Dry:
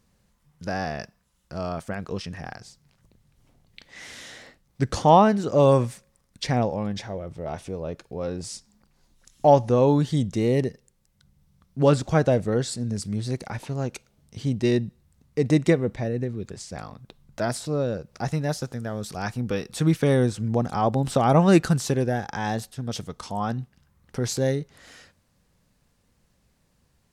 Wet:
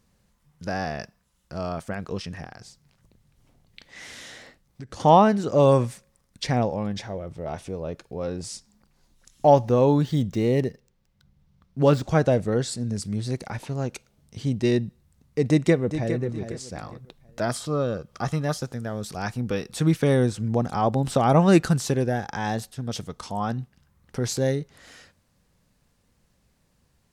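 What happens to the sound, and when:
2.44–5 compressor, threshold -36 dBFS
9.57–12.02 median filter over 5 samples
15.49–16.16 echo throw 0.41 s, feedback 30%, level -10 dB
17.49–18.58 small resonant body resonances 1200/3200 Hz, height 14 dB, ringing for 30 ms

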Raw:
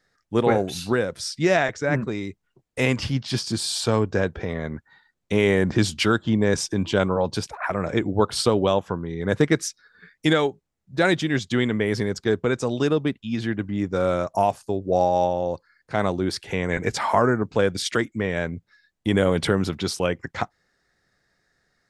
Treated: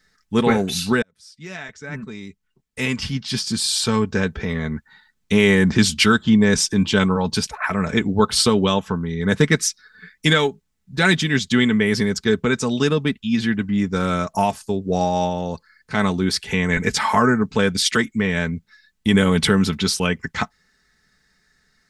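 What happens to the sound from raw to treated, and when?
1.02–4.64 fade in
whole clip: bell 550 Hz -9.5 dB 1.9 oct; notch 660 Hz, Q 12; comb 4.6 ms, depth 52%; gain +7.5 dB

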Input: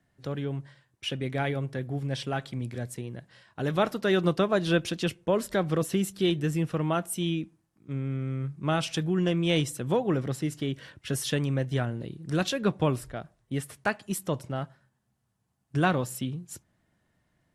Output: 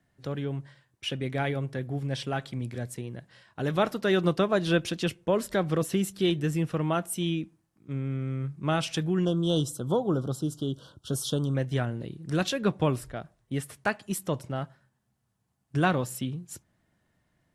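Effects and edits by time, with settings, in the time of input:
9.25–11.55 elliptic band-stop 1400–3200 Hz, stop band 60 dB

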